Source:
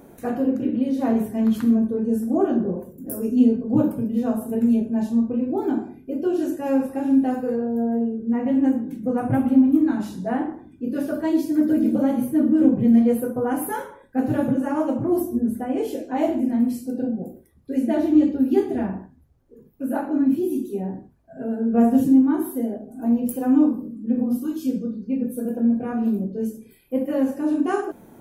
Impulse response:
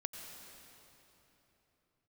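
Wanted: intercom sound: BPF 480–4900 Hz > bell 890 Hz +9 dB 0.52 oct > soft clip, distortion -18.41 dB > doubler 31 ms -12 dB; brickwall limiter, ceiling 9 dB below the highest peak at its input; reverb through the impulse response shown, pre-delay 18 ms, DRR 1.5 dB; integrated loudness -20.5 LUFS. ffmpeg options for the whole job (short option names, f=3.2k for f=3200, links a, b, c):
-filter_complex "[0:a]alimiter=limit=-14.5dB:level=0:latency=1,asplit=2[a][b];[1:a]atrim=start_sample=2205,adelay=18[c];[b][c]afir=irnorm=-1:irlink=0,volume=-0.5dB[d];[a][d]amix=inputs=2:normalize=0,highpass=480,lowpass=4.9k,equalizer=f=890:t=o:w=0.52:g=9,asoftclip=threshold=-17.5dB,asplit=2[e][f];[f]adelay=31,volume=-12dB[g];[e][g]amix=inputs=2:normalize=0,volume=8.5dB"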